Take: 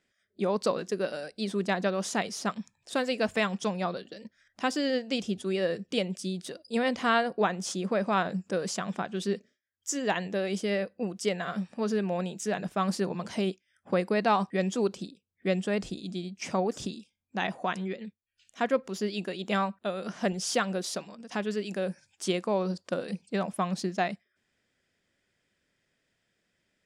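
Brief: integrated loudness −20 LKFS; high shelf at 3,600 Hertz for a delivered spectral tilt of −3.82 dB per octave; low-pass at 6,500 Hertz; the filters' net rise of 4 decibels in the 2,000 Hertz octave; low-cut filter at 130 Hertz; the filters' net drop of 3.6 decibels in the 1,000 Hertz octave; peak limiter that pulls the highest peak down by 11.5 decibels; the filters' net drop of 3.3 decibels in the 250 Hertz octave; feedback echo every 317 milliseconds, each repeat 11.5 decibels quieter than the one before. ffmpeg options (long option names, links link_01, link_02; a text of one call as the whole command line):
ffmpeg -i in.wav -af "highpass=130,lowpass=6500,equalizer=frequency=250:width_type=o:gain=-3.5,equalizer=frequency=1000:width_type=o:gain=-7,equalizer=frequency=2000:width_type=o:gain=6.5,highshelf=frequency=3600:gain=3.5,alimiter=limit=-22.5dB:level=0:latency=1,aecho=1:1:317|634|951:0.266|0.0718|0.0194,volume=14dB" out.wav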